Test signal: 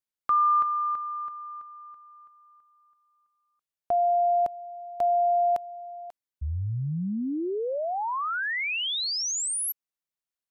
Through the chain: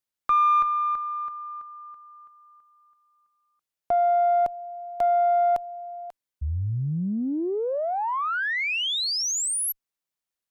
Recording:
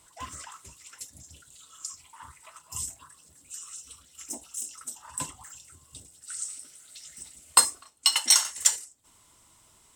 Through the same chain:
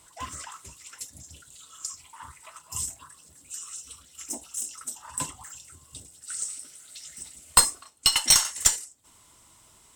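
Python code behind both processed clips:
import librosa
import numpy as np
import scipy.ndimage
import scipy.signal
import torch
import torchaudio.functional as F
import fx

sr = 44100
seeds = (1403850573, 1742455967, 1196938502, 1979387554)

y = fx.diode_clip(x, sr, knee_db=-14.0)
y = y * librosa.db_to_amplitude(3.0)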